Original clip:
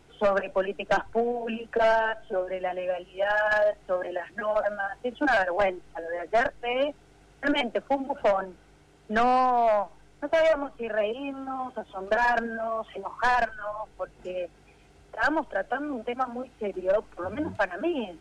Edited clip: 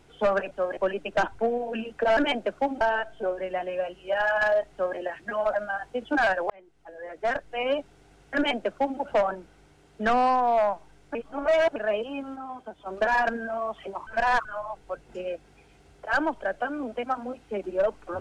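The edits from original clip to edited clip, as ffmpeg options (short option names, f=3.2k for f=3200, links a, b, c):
-filter_complex "[0:a]asplit=12[a][b][c][d][e][f][g][h][i][j][k][l];[a]atrim=end=0.512[m];[b]atrim=start=3.818:end=4.082[n];[c]atrim=start=0.508:end=1.912[o];[d]atrim=start=7.458:end=8.102[p];[e]atrim=start=1.908:end=5.6,asetpts=PTS-STARTPTS,afade=t=out:st=3.688:d=0.004:c=hsin[q];[f]atrim=start=5.6:end=10.252,asetpts=PTS-STARTPTS,afade=t=in:d=1.18[r];[g]atrim=start=10.248:end=10.862,asetpts=PTS-STARTPTS,areverse[s];[h]atrim=start=10.858:end=11.462[t];[i]atrim=start=11.458:end=11.962,asetpts=PTS-STARTPTS,volume=-5dB[u];[j]atrim=start=11.958:end=13.172[v];[k]atrim=start=13.168:end=13.552,asetpts=PTS-STARTPTS,areverse[w];[l]atrim=start=13.548[x];[m][n]acrossfade=d=0.004:c1=hsin:c2=hsin[y];[y][o]acrossfade=d=0.004:c1=hsin:c2=hsin[z];[z][p]acrossfade=d=0.004:c1=hsin:c2=hsin[aa];[q][r]concat=n=2:v=0:a=1[ab];[aa][ab]acrossfade=d=0.004:c1=hsin:c2=hsin[ac];[ac][s]acrossfade=d=0.004:c1=hsin:c2=hsin[ad];[ad][t]acrossfade=d=0.004:c1=hsin:c2=hsin[ae];[ae][u]acrossfade=d=0.004:c1=hsin:c2=hsin[af];[af][v]acrossfade=d=0.004:c1=hsin:c2=hsin[ag];[ag][w]acrossfade=d=0.004:c1=hsin:c2=hsin[ah];[ah][x]acrossfade=d=0.004:c1=hsin:c2=hsin"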